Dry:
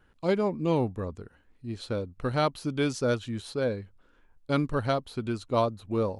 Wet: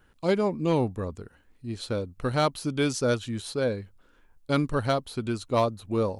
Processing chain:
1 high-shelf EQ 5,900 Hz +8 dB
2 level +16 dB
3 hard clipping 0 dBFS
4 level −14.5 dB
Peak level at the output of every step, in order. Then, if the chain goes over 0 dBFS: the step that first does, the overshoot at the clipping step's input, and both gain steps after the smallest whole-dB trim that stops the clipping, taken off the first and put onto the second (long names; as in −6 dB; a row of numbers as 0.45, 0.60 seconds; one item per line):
−11.5, +4.5, 0.0, −14.5 dBFS
step 2, 4.5 dB
step 2 +11 dB, step 4 −9.5 dB